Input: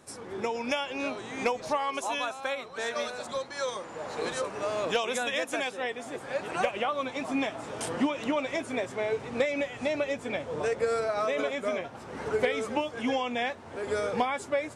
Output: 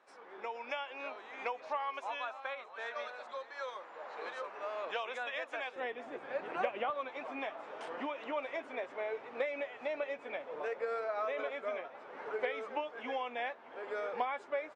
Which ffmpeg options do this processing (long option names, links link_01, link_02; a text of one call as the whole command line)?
ffmpeg -i in.wav -af "asetnsamples=nb_out_samples=441:pad=0,asendcmd='5.76 highpass f 270;6.9 highpass f 510',highpass=670,lowpass=2400,aecho=1:1:620:0.112,volume=-5.5dB" out.wav